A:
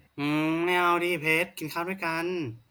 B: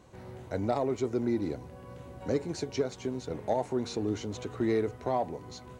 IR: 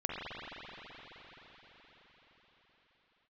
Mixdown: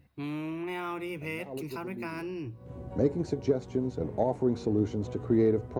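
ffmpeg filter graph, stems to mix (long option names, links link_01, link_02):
-filter_complex "[0:a]lowshelf=frequency=400:gain=9.5,acompressor=threshold=-25dB:ratio=2.5,volume=-9.5dB,asplit=2[link_01][link_02];[1:a]tiltshelf=frequency=970:gain=8,adelay=700,volume=-2dB[link_03];[link_02]apad=whole_len=286555[link_04];[link_03][link_04]sidechaincompress=threshold=-57dB:ratio=5:attack=8.9:release=153[link_05];[link_01][link_05]amix=inputs=2:normalize=0"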